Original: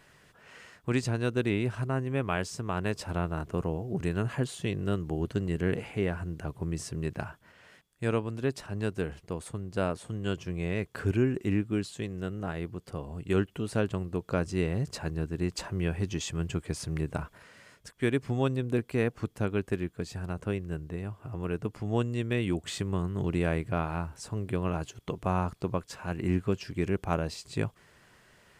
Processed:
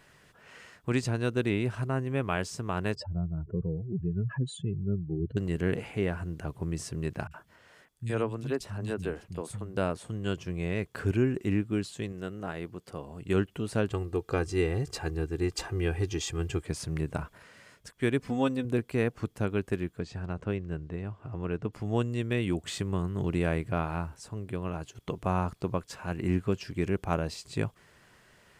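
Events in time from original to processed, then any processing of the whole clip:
2.95–5.37 spectral contrast raised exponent 2.7
7.27–9.77 three bands offset in time lows, highs, mids 40/70 ms, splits 190/2500 Hz
12.12–13.22 low shelf 120 Hz -11 dB
13.9–16.63 comb 2.5 ms, depth 67%
18.19–18.65 comb 4 ms
19.99–21.73 air absorption 94 m
24.15–24.95 gain -4 dB

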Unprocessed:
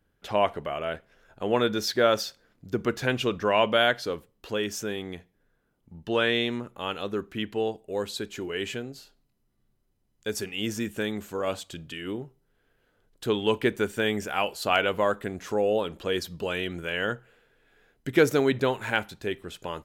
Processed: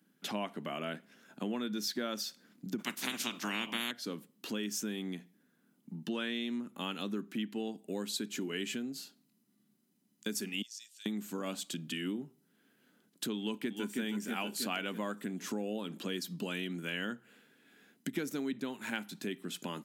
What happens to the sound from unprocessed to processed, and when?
2.78–3.9 spectral limiter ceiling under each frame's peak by 29 dB
10.62–11.06 ladder band-pass 5200 Hz, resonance 50%
13.38–14.02 echo throw 0.32 s, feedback 50%, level -6 dB
whole clip: EQ curve 260 Hz 0 dB, 470 Hz -15 dB, 9200 Hz -2 dB; compressor 6:1, threshold -42 dBFS; steep high-pass 180 Hz 36 dB/oct; gain +9 dB

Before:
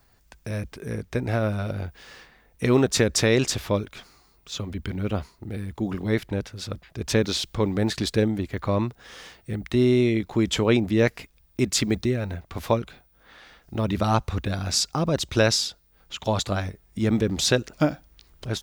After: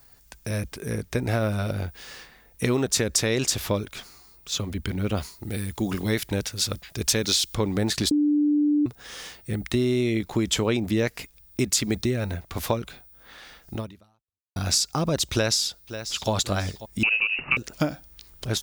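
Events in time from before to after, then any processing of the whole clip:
5.17–7.55 high shelf 2500 Hz +8 dB
8.11–8.86 bleep 295 Hz -14 dBFS
13.74–14.56 fade out exponential
15.33–16.31 echo throw 0.54 s, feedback 35%, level -17.5 dB
17.03–17.57 inverted band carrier 2800 Hz
whole clip: high shelf 5200 Hz +10.5 dB; compressor, threshold -21 dBFS; gain +1.5 dB

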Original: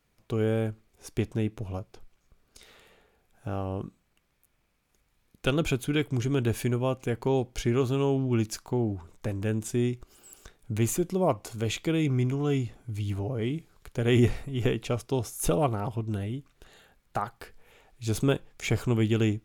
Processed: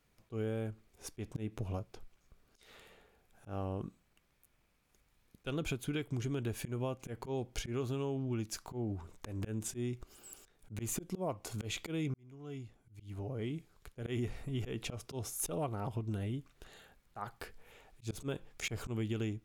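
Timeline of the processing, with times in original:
12.14–14.79 fade in
whole clip: auto swell 0.189 s; compressor 6:1, threshold -32 dBFS; gain -1.5 dB

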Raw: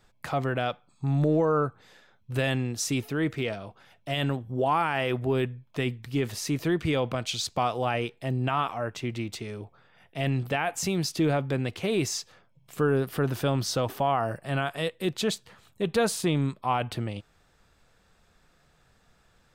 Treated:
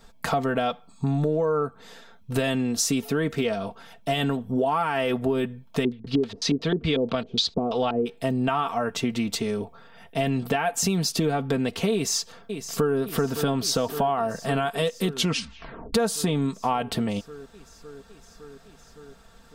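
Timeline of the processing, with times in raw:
5.83–8.05 LFO low-pass square 7.1 Hz -> 2.3 Hz 380–4000 Hz
11.93–12.97 echo throw 0.56 s, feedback 80%, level -15.5 dB
15.11 tape stop 0.83 s
whole clip: bell 2200 Hz -5 dB 0.76 oct; comb 4.4 ms, depth 65%; compressor, threshold -30 dBFS; gain +9 dB

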